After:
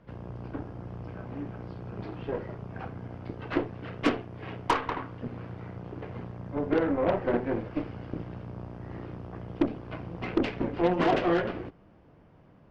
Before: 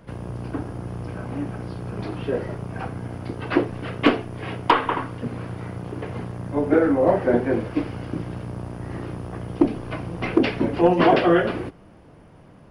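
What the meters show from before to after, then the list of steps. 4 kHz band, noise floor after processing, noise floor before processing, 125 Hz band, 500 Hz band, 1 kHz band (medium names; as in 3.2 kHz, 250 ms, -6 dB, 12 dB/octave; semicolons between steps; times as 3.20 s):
-8.5 dB, -57 dBFS, -48 dBFS, -7.5 dB, -8.0 dB, -8.0 dB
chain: distance through air 140 m; Chebyshev shaper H 6 -18 dB, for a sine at -6.5 dBFS; trim -8 dB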